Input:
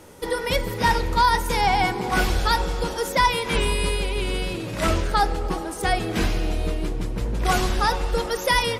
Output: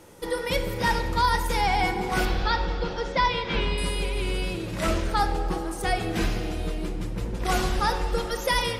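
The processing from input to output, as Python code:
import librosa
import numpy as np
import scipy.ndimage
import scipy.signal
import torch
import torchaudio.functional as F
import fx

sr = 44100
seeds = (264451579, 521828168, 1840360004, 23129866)

y = fx.lowpass(x, sr, hz=4900.0, slope=24, at=(2.25, 3.78))
y = fx.room_shoebox(y, sr, seeds[0], volume_m3=1600.0, walls='mixed', distance_m=0.8)
y = F.gain(torch.from_numpy(y), -4.0).numpy()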